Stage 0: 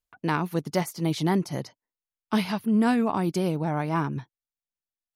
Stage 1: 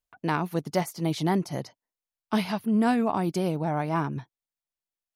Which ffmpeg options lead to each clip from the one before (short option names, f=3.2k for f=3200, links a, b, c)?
-af "equalizer=f=690:t=o:w=0.55:g=4,volume=-1.5dB"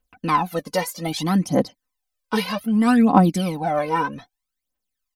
-af "aecho=1:1:3.9:0.74,aphaser=in_gain=1:out_gain=1:delay=2.2:decay=0.75:speed=0.63:type=triangular,volume=2.5dB"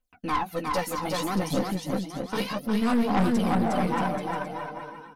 -af "flanger=delay=7.3:depth=9.9:regen=-16:speed=1.5:shape=triangular,aecho=1:1:360|630|832.5|984.4|1098:0.631|0.398|0.251|0.158|0.1,aeval=exprs='(tanh(8.91*val(0)+0.55)-tanh(0.55))/8.91':c=same"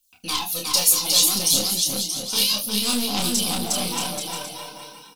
-filter_complex "[0:a]aexciter=amount=9.3:drive=9.1:freq=2.9k,asplit=2[a][b];[b]aecho=0:1:29|73:0.668|0.15[c];[a][c]amix=inputs=2:normalize=0,volume=-6dB"